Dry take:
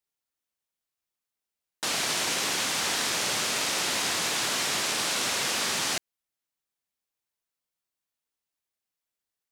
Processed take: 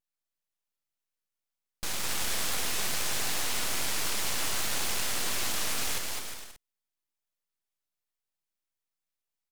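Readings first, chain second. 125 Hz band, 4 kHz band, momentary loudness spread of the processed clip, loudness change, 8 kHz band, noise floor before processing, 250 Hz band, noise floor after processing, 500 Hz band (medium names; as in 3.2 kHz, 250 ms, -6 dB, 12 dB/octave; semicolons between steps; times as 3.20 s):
0.0 dB, -5.5 dB, 6 LU, -4.0 dB, -3.5 dB, under -85 dBFS, -5.0 dB, under -85 dBFS, -5.5 dB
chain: vibrato 0.49 Hz 9.7 cents; bouncing-ball echo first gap 210 ms, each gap 0.7×, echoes 5; full-wave rectifier; trim -2 dB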